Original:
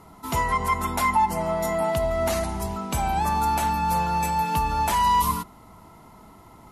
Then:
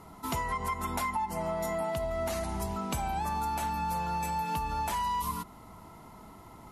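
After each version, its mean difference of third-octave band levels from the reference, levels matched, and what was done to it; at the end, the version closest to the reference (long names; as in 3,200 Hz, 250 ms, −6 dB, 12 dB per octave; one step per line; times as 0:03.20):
2.5 dB: downward compressor, threshold −28 dBFS, peak gain reduction 11 dB
level −1.5 dB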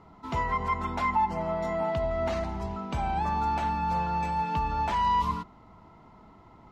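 3.5 dB: high-frequency loss of the air 180 metres
level −4 dB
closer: first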